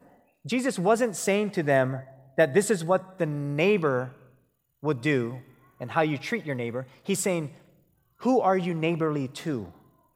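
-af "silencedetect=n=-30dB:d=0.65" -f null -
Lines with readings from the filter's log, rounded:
silence_start: 4.05
silence_end: 4.84 | silence_duration: 0.79
silence_start: 7.47
silence_end: 8.24 | silence_duration: 0.77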